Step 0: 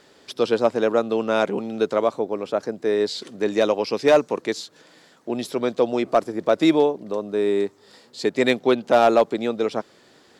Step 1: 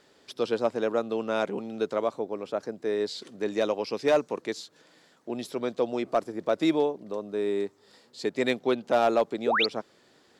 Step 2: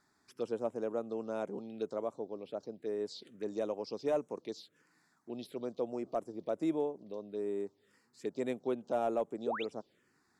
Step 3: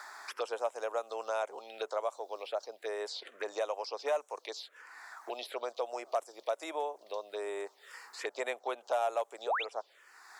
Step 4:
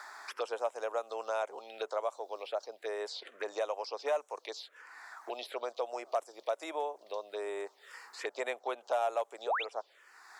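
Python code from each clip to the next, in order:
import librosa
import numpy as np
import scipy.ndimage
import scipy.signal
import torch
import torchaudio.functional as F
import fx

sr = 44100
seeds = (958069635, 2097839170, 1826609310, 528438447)

y1 = fx.spec_paint(x, sr, seeds[0], shape='rise', start_s=9.46, length_s=0.2, low_hz=340.0, high_hz=5100.0, level_db=-17.0)
y1 = y1 * 10.0 ** (-7.0 / 20.0)
y2 = fx.dynamic_eq(y1, sr, hz=1800.0, q=0.92, threshold_db=-43.0, ratio=4.0, max_db=-8)
y2 = fx.env_phaser(y2, sr, low_hz=490.0, high_hz=4600.0, full_db=-24.0)
y2 = y2 * 10.0 ** (-8.0 / 20.0)
y3 = scipy.signal.sosfilt(scipy.signal.butter(4, 660.0, 'highpass', fs=sr, output='sos'), y2)
y3 = fx.band_squash(y3, sr, depth_pct=70)
y3 = y3 * 10.0 ** (9.0 / 20.0)
y4 = fx.high_shelf(y3, sr, hz=6800.0, db=-4.0)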